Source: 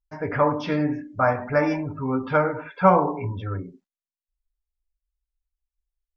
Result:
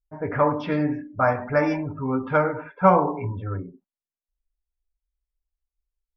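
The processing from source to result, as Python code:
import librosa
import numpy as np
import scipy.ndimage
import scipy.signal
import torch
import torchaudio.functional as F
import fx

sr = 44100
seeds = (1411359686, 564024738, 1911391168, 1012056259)

y = fx.env_lowpass(x, sr, base_hz=720.0, full_db=-15.0)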